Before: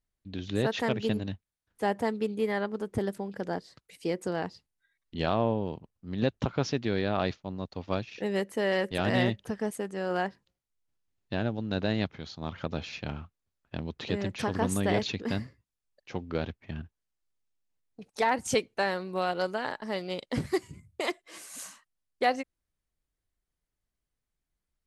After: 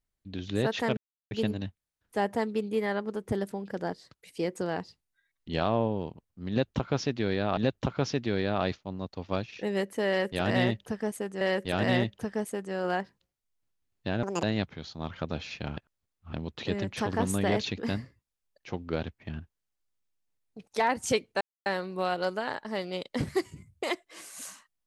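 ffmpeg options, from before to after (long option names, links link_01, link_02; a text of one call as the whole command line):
ffmpeg -i in.wav -filter_complex "[0:a]asplit=9[link_01][link_02][link_03][link_04][link_05][link_06][link_07][link_08][link_09];[link_01]atrim=end=0.97,asetpts=PTS-STARTPTS,afade=type=out:start_time=0.966:duration=0.004:curve=hsin,apad=pad_dur=0.34[link_10];[link_02]atrim=start=0.97:end=7.232,asetpts=PTS-STARTPTS,afade=type=in:duration=0.004:curve=hsin[link_11];[link_03]atrim=start=6.158:end=10.002[link_12];[link_04]atrim=start=8.668:end=11.494[link_13];[link_05]atrim=start=11.49:end=11.85,asetpts=PTS-STARTPTS,asetrate=79821,aresample=44100,atrim=end_sample=8771,asetpts=PTS-STARTPTS[link_14];[link_06]atrim=start=11.846:end=13.192[link_15];[link_07]atrim=start=13.188:end=13.752,asetpts=PTS-STARTPTS,areverse[link_16];[link_08]atrim=start=13.748:end=18.83,asetpts=PTS-STARTPTS,afade=type=out:start_time=5.078:duration=0.004:curve=hsin,apad=pad_dur=0.25[link_17];[link_09]atrim=start=18.83,asetpts=PTS-STARTPTS,afade=type=in:duration=0.004:curve=hsin[link_18];[link_10][link_11]concat=n=2:v=0:a=1[link_19];[link_19][link_12]acrossfade=duration=0.004:curve1=hsin:curve2=hsin[link_20];[link_20][link_13]acrossfade=duration=0.004:curve1=hsin:curve2=hsin[link_21];[link_21][link_14]acrossfade=duration=0.004:curve1=hsin:curve2=hsin[link_22];[link_22][link_15]acrossfade=duration=0.004:curve1=hsin:curve2=hsin[link_23];[link_23][link_16]acrossfade=duration=0.004:curve1=hsin:curve2=hsin[link_24];[link_17][link_18]concat=n=2:v=0:a=1[link_25];[link_24][link_25]acrossfade=duration=0.004:curve1=hsin:curve2=hsin" out.wav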